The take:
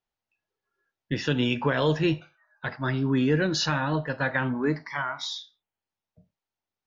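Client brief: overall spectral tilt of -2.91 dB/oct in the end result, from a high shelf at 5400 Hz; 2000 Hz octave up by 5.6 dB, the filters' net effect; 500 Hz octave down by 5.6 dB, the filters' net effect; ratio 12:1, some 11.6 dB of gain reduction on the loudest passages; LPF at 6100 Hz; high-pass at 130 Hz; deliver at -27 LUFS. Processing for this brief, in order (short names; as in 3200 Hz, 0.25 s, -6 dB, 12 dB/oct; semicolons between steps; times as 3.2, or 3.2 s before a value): HPF 130 Hz; LPF 6100 Hz; bell 500 Hz -7.5 dB; bell 2000 Hz +8.5 dB; high shelf 5400 Hz -3 dB; compressor 12:1, threshold -30 dBFS; gain +7.5 dB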